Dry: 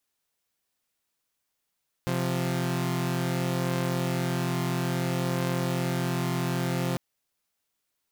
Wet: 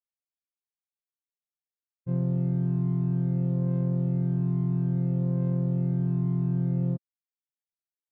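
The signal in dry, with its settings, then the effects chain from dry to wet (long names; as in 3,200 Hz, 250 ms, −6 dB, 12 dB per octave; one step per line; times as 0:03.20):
held notes C3/F3 saw, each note −26 dBFS 4.90 s
every bin expanded away from the loudest bin 2.5 to 1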